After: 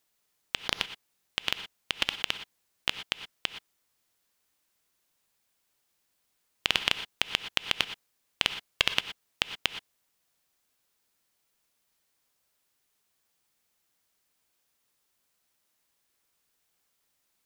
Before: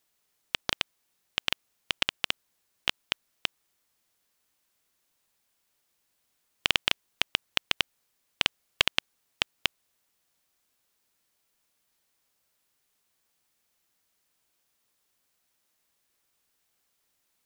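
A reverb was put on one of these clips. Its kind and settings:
reverb whose tail is shaped and stops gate 140 ms rising, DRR 10 dB
level −1 dB

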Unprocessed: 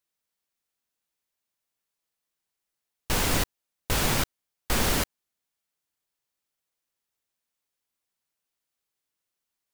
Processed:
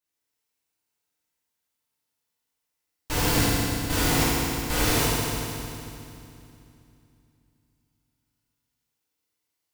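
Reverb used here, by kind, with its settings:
feedback delay network reverb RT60 2.7 s, low-frequency decay 1.35×, high-frequency decay 0.95×, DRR −9.5 dB
level −6.5 dB

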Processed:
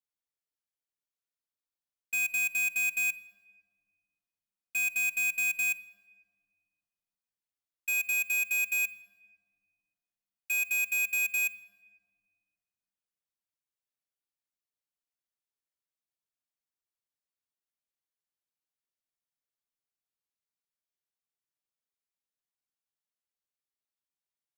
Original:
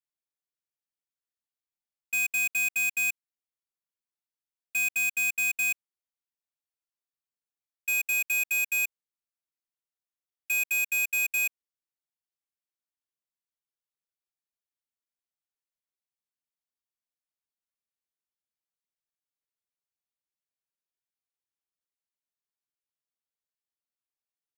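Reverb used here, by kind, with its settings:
rectangular room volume 2,300 cubic metres, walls mixed, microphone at 0.37 metres
level −3.5 dB

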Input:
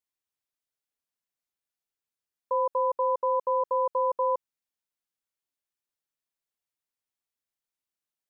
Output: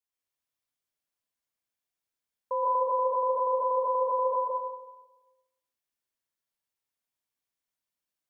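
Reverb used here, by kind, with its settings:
dense smooth reverb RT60 1.1 s, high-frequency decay 0.8×, pre-delay 110 ms, DRR −3.5 dB
level −3.5 dB

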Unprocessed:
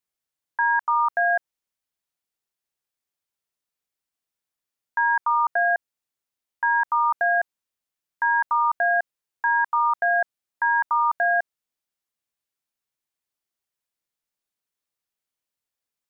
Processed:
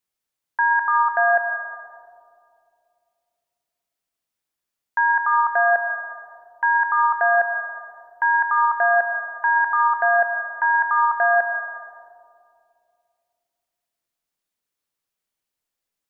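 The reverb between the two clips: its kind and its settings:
comb and all-pass reverb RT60 2.4 s, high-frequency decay 0.25×, pre-delay 80 ms, DRR 5.5 dB
level +2.5 dB

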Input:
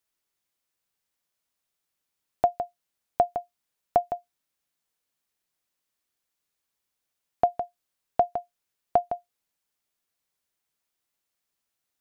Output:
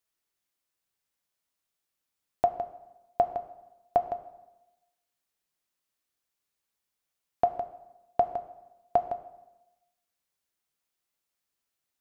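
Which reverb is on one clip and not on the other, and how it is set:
dense smooth reverb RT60 1 s, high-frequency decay 0.75×, DRR 9 dB
level −2.5 dB

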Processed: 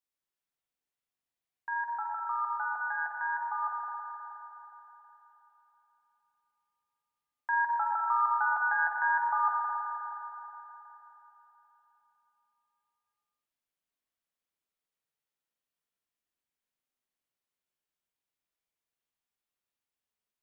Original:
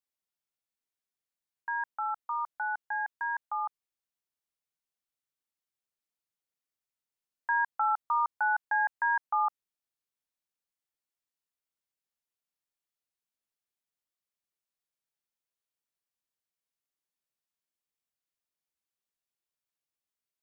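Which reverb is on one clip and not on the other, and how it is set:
spring reverb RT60 3.7 s, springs 40/52 ms, chirp 60 ms, DRR −2.5 dB
level −2.5 dB

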